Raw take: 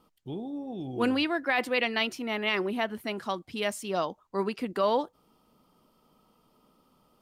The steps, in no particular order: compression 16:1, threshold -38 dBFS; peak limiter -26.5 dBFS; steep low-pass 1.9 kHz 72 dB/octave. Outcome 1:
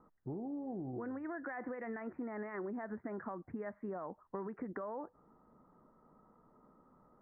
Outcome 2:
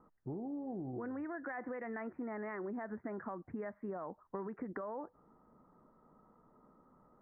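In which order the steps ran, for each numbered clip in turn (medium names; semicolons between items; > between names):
peak limiter > steep low-pass > compression; steep low-pass > peak limiter > compression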